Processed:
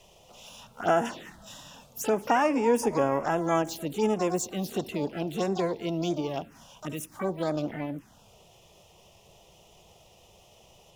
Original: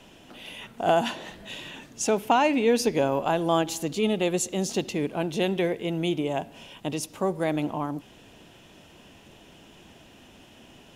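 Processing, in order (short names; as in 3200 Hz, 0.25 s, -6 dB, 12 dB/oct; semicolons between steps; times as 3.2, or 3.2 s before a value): harmoniser +12 st -7 dB; envelope phaser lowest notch 240 Hz, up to 4100 Hz, full sweep at -19.5 dBFS; gain -2.5 dB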